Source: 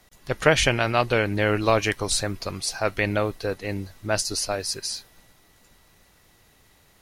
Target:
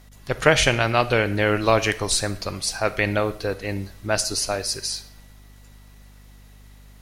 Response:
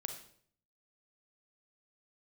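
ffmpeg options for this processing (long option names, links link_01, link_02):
-filter_complex "[0:a]aeval=exprs='val(0)+0.00316*(sin(2*PI*50*n/s)+sin(2*PI*2*50*n/s)/2+sin(2*PI*3*50*n/s)/3+sin(2*PI*4*50*n/s)/4+sin(2*PI*5*50*n/s)/5)':channel_layout=same,asplit=2[link_01][link_02];[link_02]lowshelf=frequency=420:gain=-8.5[link_03];[1:a]atrim=start_sample=2205,lowshelf=frequency=180:gain=7.5[link_04];[link_03][link_04]afir=irnorm=-1:irlink=0,volume=-3dB[link_05];[link_01][link_05]amix=inputs=2:normalize=0,volume=-1.5dB"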